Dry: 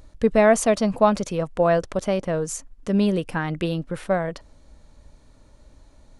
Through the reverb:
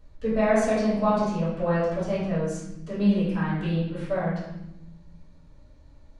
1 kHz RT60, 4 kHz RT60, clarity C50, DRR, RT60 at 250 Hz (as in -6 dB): 0.85 s, 0.75 s, 0.5 dB, -14.0 dB, 1.7 s